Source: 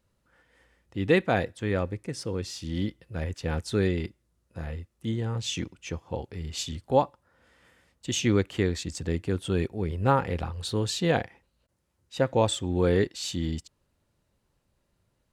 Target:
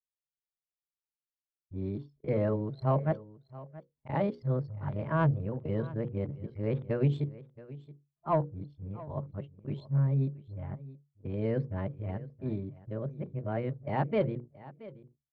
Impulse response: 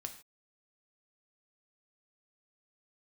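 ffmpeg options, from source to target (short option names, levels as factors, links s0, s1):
-filter_complex "[0:a]areverse,lowpass=1200,agate=range=0.0224:threshold=0.00224:ratio=3:detection=peak,bandreject=f=50:t=h:w=6,bandreject=f=100:t=h:w=6,bandreject=f=150:t=h:w=6,bandreject=f=200:t=h:w=6,bandreject=f=250:t=h:w=6,bandreject=f=300:t=h:w=6,bandreject=f=350:t=h:w=6,bandreject=f=400:t=h:w=6,bandreject=f=450:t=h:w=6,anlmdn=0.0631,equalizer=f=120:t=o:w=0.2:g=14.5,asoftclip=type=tanh:threshold=0.335,asetrate=52444,aresample=44100,atempo=0.840896,asplit=2[s0][s1];[s1]aecho=0:1:676:0.119[s2];[s0][s2]amix=inputs=2:normalize=0,volume=0.562"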